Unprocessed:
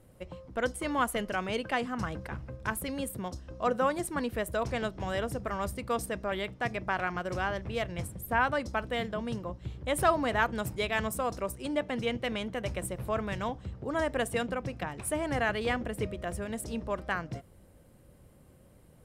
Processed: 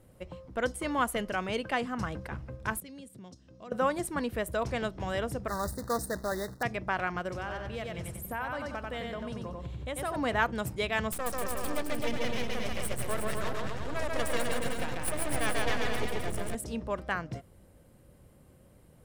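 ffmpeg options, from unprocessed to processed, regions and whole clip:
ffmpeg -i in.wav -filter_complex "[0:a]asettb=1/sr,asplit=3[link_01][link_02][link_03];[link_01]atrim=end=2.804[link_04];[link_02]atrim=start=2.8:end=3.72,asetpts=PTS-STARTPTS,afade=type=in:duration=0.004:curve=qsin,afade=type=out:start_time=0.916:duration=0.004:curve=qsin,equalizer=frequency=1000:width=0.37:gain=-13,acompressor=threshold=-42dB:ratio=4:attack=3.2:release=140:knee=1:detection=peak,highpass=150,lowpass=6600[link_05];[link_03]atrim=start=3.716[link_06];[link_04][link_05]acrossfade=duration=0.004:curve1=hsin:curve2=qsin[link_07];[link_07][link_06]acrossfade=duration=0.004:curve1=qsin:curve2=hsin,asettb=1/sr,asplit=3[link_08][link_09][link_10];[link_08]atrim=end=5.484[link_11];[link_09]atrim=start=5.48:end=6.63,asetpts=PTS-STARTPTS,afade=type=in:duration=0.004:curve=qsin,afade=type=out:start_time=1.146:duration=0.004:curve=qsin,acrusher=bits=2:mode=log:mix=0:aa=0.000001,asuperstop=centerf=2700:order=20:qfactor=1.6[link_12];[link_10]atrim=start=6.626[link_13];[link_11][link_12]acrossfade=duration=0.004:curve1=hsin:curve2=qsin[link_14];[link_14][link_13]acrossfade=duration=0.004:curve1=qsin:curve2=hsin,asettb=1/sr,asplit=3[link_15][link_16][link_17];[link_15]atrim=end=7.294[link_18];[link_16]atrim=start=7.29:end=10.16,asetpts=PTS-STARTPTS,afade=type=in:duration=0.004:curve=qsin,afade=type=out:start_time=2.866:duration=0.004:curve=qsin,aecho=1:1:92|184|276|368:0.596|0.197|0.0649|0.0214,atrim=end_sample=126567,acompressor=threshold=-35dB:ratio=2.5:attack=3.2:release=140:knee=1:detection=peak[link_19];[link_17]atrim=start=10.156[link_20];[link_18][link_19]acrossfade=duration=0.004:curve1=hsin:curve2=qsin[link_21];[link_21][link_20]acrossfade=duration=0.004:curve1=qsin:curve2=hsin,asettb=1/sr,asplit=3[link_22][link_23][link_24];[link_22]atrim=end=11.124[link_25];[link_23]atrim=start=11.12:end=16.55,asetpts=PTS-STARTPTS,afade=type=in:duration=0.004:curve=qsin,afade=type=out:start_time=5.426:duration=0.004:curve=qsin,highshelf=frequency=4700:gain=6.5,aeval=exprs='max(val(0),0)':channel_layout=same,aecho=1:1:140|259|360.2|446.1|519.2:0.794|0.631|0.501|0.398|0.316,atrim=end_sample=239463[link_26];[link_24]atrim=start=16.546[link_27];[link_25][link_26]acrossfade=duration=0.004:curve1=hsin:curve2=qsin[link_28];[link_28][link_27]acrossfade=duration=0.004:curve1=qsin:curve2=hsin" out.wav

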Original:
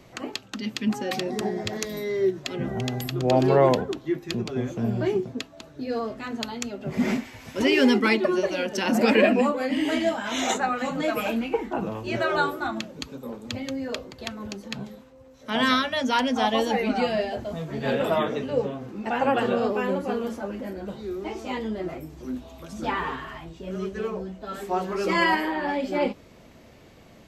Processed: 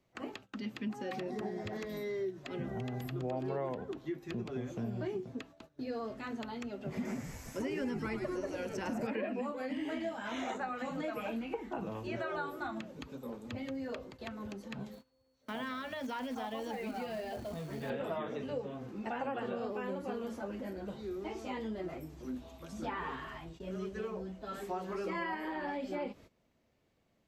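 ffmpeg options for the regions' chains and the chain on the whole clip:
ffmpeg -i in.wav -filter_complex "[0:a]asettb=1/sr,asplit=3[link_01][link_02][link_03];[link_01]atrim=end=7.054[link_04];[link_02]atrim=start=7.05:end=9.07,asetpts=PTS-STARTPTS,afade=type=in:duration=0.004:curve=qsin,afade=type=out:start_time=2.016:duration=0.004:curve=qsin,highshelf=frequency=4900:width_type=q:width=1.5:gain=12,asplit=6[link_05][link_06][link_07][link_08][link_09][link_10];[link_06]adelay=105,afreqshift=-89,volume=-10dB[link_11];[link_07]adelay=210,afreqshift=-178,volume=-16.6dB[link_12];[link_08]adelay=315,afreqshift=-267,volume=-23.1dB[link_13];[link_09]adelay=420,afreqshift=-356,volume=-29.7dB[link_14];[link_10]adelay=525,afreqshift=-445,volume=-36.2dB[link_15];[link_05][link_11][link_12][link_13][link_14][link_15]amix=inputs=6:normalize=0,atrim=end_sample=89082[link_16];[link_03]atrim=start=9.066[link_17];[link_04][link_16]acrossfade=duration=0.004:curve1=hsin:curve2=qsin[link_18];[link_18][link_17]acrossfade=duration=0.004:curve1=qsin:curve2=hsin,asettb=1/sr,asplit=3[link_19][link_20][link_21];[link_19]atrim=end=14.924[link_22];[link_20]atrim=start=14.92:end=17.9,asetpts=PTS-STARTPTS,afade=type=in:duration=0.004:curve=qsin,afade=type=out:start_time=2.976:duration=0.004:curve=qsin,acrusher=bits=4:mode=log:mix=0:aa=0.000001,acompressor=threshold=-29dB:ratio=2.5:attack=3.2:release=140:knee=1:detection=peak,aeval=exprs='val(0)+0.00112*sin(2*PI*4400*n/s)':channel_layout=same[link_23];[link_21]atrim=start=17.896[link_24];[link_22][link_23]acrossfade=duration=0.004:curve1=hsin:curve2=qsin[link_25];[link_25][link_24]acrossfade=duration=0.004:curve1=qsin:curve2=hsin,acrossover=split=2500[link_26][link_27];[link_27]acompressor=threshold=-44dB:ratio=4:attack=1:release=60[link_28];[link_26][link_28]amix=inputs=2:normalize=0,agate=range=-17dB:threshold=-44dB:ratio=16:detection=peak,acompressor=threshold=-28dB:ratio=4,volume=-7dB" out.wav

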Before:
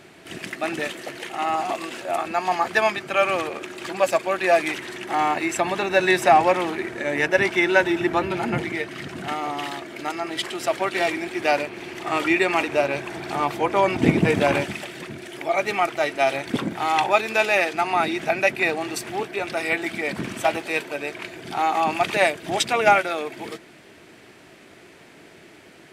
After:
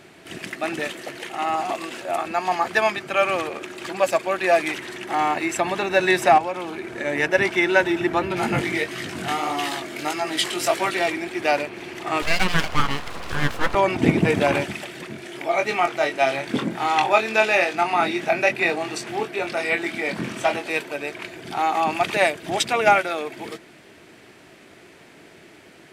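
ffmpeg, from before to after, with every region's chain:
ffmpeg -i in.wav -filter_complex "[0:a]asettb=1/sr,asplit=3[link_01][link_02][link_03];[link_01]atrim=end=6.384[link_04];[link_02]atrim=start=6.38:end=6.95,asetpts=PTS-STARTPTS,afade=type=in:duration=0.004:curve=qsin,afade=type=out:start_time=0.566:duration=0.004:curve=qsin,bandreject=frequency=1900:width=7.8,acompressor=threshold=-30dB:ratio=2:attack=3.2:release=140:knee=1:detection=peak[link_05];[link_03]atrim=start=6.946[link_06];[link_04][link_05]acrossfade=duration=0.004:curve1=hsin:curve2=qsin[link_07];[link_07][link_06]acrossfade=duration=0.004:curve1=qsin:curve2=hsin,asettb=1/sr,asplit=3[link_08][link_09][link_10];[link_08]atrim=end=8.364[link_11];[link_09]atrim=start=8.36:end=10.95,asetpts=PTS-STARTPTS,afade=type=in:duration=0.004:curve=qsin,afade=type=out:start_time=2.586:duration=0.004:curve=qsin,highshelf=frequency=3700:gain=7.5,acontrast=28,flanger=delay=16.5:depth=6.3:speed=1.6[link_12];[link_10]atrim=start=10.946[link_13];[link_11][link_12]acrossfade=duration=0.004:curve1=hsin:curve2=qsin[link_14];[link_14][link_13]acrossfade=duration=0.004:curve1=qsin:curve2=hsin,asettb=1/sr,asplit=3[link_15][link_16][link_17];[link_15]atrim=end=12.224[link_18];[link_16]atrim=start=12.22:end=13.75,asetpts=PTS-STARTPTS,afade=type=in:duration=0.004:curve=qsin,afade=type=out:start_time=1.526:duration=0.004:curve=qsin,asuperstop=centerf=1300:order=4:qfactor=4.4,equalizer=frequency=860:width=0.77:gain=5,aeval=exprs='abs(val(0))':channel_layout=same[link_19];[link_17]atrim=start=13.746[link_20];[link_18][link_19]acrossfade=duration=0.004:curve1=hsin:curve2=qsin[link_21];[link_21][link_20]acrossfade=duration=0.004:curve1=qsin:curve2=hsin,asettb=1/sr,asplit=3[link_22][link_23][link_24];[link_22]atrim=end=15.074[link_25];[link_23]atrim=start=15.07:end=20.7,asetpts=PTS-STARTPTS,afade=type=in:duration=0.004:curve=qsin,afade=type=out:start_time=5.626:duration=0.004:curve=qsin,acrossover=split=8700[link_26][link_27];[link_27]acompressor=threshold=-55dB:ratio=4:attack=1:release=60[link_28];[link_26][link_28]amix=inputs=2:normalize=0,highpass=110,asplit=2[link_29][link_30];[link_30]adelay=23,volume=-6dB[link_31];[link_29][link_31]amix=inputs=2:normalize=0,atrim=end_sample=248283[link_32];[link_24]atrim=start=20.696[link_33];[link_25][link_32]acrossfade=duration=0.004:curve1=hsin:curve2=qsin[link_34];[link_34][link_33]acrossfade=duration=0.004:curve1=qsin:curve2=hsin" out.wav

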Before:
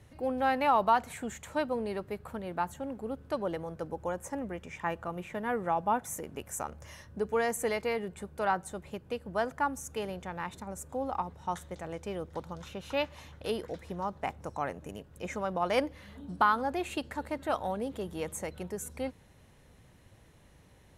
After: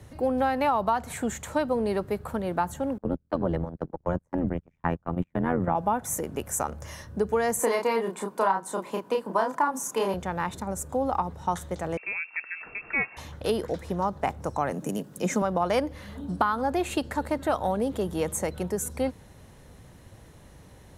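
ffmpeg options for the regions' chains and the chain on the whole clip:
ffmpeg -i in.wav -filter_complex "[0:a]asettb=1/sr,asplit=3[link_01][link_02][link_03];[link_01]atrim=end=2.984[link_04];[link_02]atrim=start=2.98:end=5.75,asetpts=PTS-STARTPTS,afade=type=in:duration=0.004:curve=qsin,afade=type=out:start_time=2.766:duration=0.004:curve=qsin,bass=frequency=250:gain=12,treble=frequency=4000:gain=-11,tremolo=f=86:d=0.919,agate=range=-35dB:threshold=-37dB:ratio=16:release=100:detection=peak[link_05];[link_03]atrim=start=5.746[link_06];[link_04][link_05]acrossfade=duration=0.004:curve1=hsin:curve2=qsin[link_07];[link_07][link_06]acrossfade=duration=0.004:curve1=qsin:curve2=hsin,asettb=1/sr,asplit=3[link_08][link_09][link_10];[link_08]atrim=end=7.594[link_11];[link_09]atrim=start=7.59:end=10.14,asetpts=PTS-STARTPTS,afade=type=in:duration=0.004:curve=qsin,afade=type=out:start_time=2.546:duration=0.004:curve=qsin,highpass=frequency=210:width=0.5412,highpass=frequency=210:width=1.3066,equalizer=frequency=1000:width=6.4:gain=15,asplit=2[link_12][link_13];[link_13]adelay=31,volume=-3dB[link_14];[link_12][link_14]amix=inputs=2:normalize=0,atrim=end_sample=112455[link_15];[link_10]atrim=start=10.136[link_16];[link_11][link_15]acrossfade=duration=0.004:curve1=hsin:curve2=qsin[link_17];[link_17][link_16]acrossfade=duration=0.004:curve1=qsin:curve2=hsin,asettb=1/sr,asplit=3[link_18][link_19][link_20];[link_18]atrim=end=11.974[link_21];[link_19]atrim=start=11.97:end=13.17,asetpts=PTS-STARTPTS,afade=type=in:duration=0.004:curve=qsin,afade=type=out:start_time=1.196:duration=0.004:curve=qsin,highpass=frequency=110:poles=1,lowpass=frequency=2400:width_type=q:width=0.5098,lowpass=frequency=2400:width_type=q:width=0.6013,lowpass=frequency=2400:width_type=q:width=0.9,lowpass=frequency=2400:width_type=q:width=2.563,afreqshift=-2800[link_22];[link_20]atrim=start=13.166[link_23];[link_21][link_22]acrossfade=duration=0.004:curve1=hsin:curve2=qsin[link_24];[link_24][link_23]acrossfade=duration=0.004:curve1=qsin:curve2=hsin,asettb=1/sr,asplit=3[link_25][link_26][link_27];[link_25]atrim=end=14.714[link_28];[link_26]atrim=start=14.71:end=15.42,asetpts=PTS-STARTPTS,afade=type=in:duration=0.004:curve=qsin,afade=type=out:start_time=0.706:duration=0.004:curve=qsin,highpass=frequency=190:width=0.5412,highpass=frequency=190:width=1.3066,bass=frequency=250:gain=13,treble=frequency=4000:gain=7[link_29];[link_27]atrim=start=15.416[link_30];[link_28][link_29]acrossfade=duration=0.004:curve1=hsin:curve2=qsin[link_31];[link_31][link_30]acrossfade=duration=0.004:curve1=qsin:curve2=hsin,equalizer=frequency=2500:width=1.3:gain=-4.5,acrossover=split=150[link_32][link_33];[link_33]acompressor=threshold=-30dB:ratio=6[link_34];[link_32][link_34]amix=inputs=2:normalize=0,volume=9dB" out.wav

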